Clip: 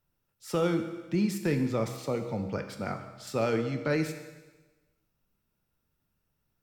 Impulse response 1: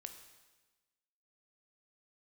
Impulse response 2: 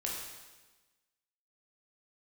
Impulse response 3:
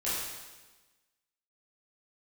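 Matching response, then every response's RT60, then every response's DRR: 1; 1.2, 1.2, 1.2 s; 6.0, -3.5, -11.0 dB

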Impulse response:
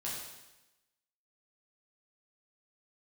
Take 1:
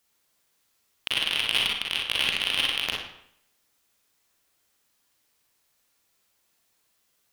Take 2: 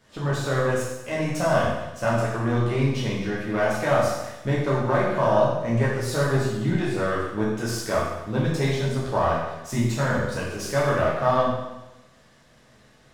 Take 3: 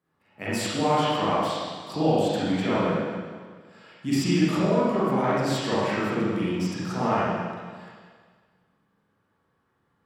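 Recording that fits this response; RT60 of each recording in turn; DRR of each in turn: 2; 0.70, 1.0, 1.7 s; -2.5, -7.0, -10.0 dB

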